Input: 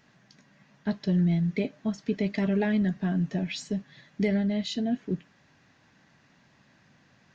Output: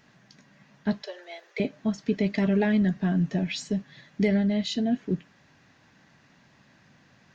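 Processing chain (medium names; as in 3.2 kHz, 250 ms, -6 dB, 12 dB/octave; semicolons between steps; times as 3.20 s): 1.02–1.60 s: steep high-pass 450 Hz 48 dB/octave; trim +2.5 dB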